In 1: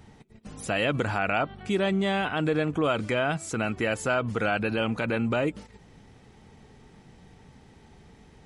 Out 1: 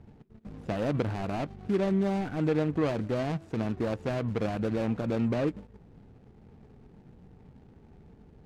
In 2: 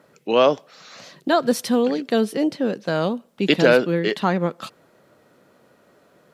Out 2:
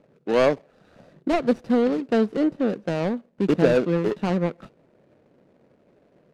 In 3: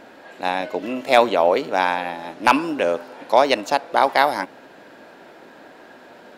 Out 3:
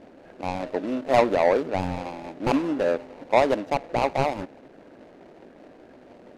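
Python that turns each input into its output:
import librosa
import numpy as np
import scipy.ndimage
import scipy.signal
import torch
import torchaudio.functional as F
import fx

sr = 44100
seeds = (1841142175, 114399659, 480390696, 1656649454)

y = scipy.ndimage.median_filter(x, 41, mode='constant')
y = scipy.signal.sosfilt(scipy.signal.butter(2, 12000.0, 'lowpass', fs=sr, output='sos'), y)
y = fx.high_shelf(y, sr, hz=6900.0, db=-9.5)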